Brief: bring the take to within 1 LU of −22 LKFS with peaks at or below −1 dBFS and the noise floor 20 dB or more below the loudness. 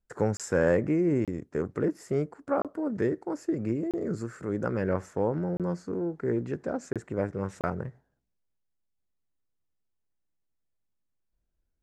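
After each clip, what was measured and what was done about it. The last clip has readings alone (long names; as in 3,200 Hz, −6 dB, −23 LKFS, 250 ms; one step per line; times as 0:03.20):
number of dropouts 7; longest dropout 27 ms; integrated loudness −30.0 LKFS; sample peak −12.5 dBFS; target loudness −22.0 LKFS
→ repair the gap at 0:00.37/0:01.25/0:02.62/0:03.91/0:05.57/0:06.93/0:07.61, 27 ms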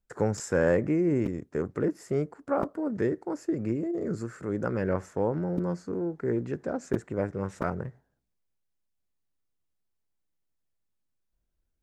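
number of dropouts 0; integrated loudness −30.0 LKFS; sample peak −11.0 dBFS; target loudness −22.0 LKFS
→ level +8 dB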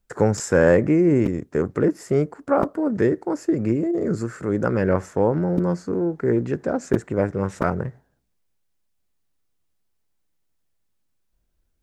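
integrated loudness −22.0 LKFS; sample peak −3.0 dBFS; background noise floor −71 dBFS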